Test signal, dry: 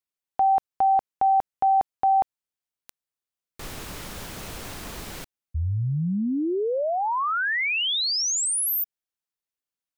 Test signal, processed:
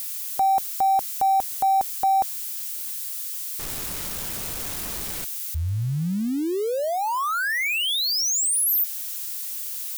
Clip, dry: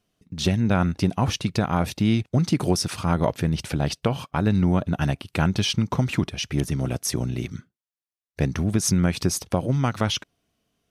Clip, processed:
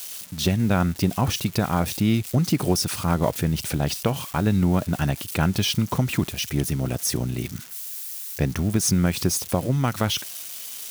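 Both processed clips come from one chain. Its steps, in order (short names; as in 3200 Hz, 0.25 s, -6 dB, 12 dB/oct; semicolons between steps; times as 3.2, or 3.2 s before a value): switching spikes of -26 dBFS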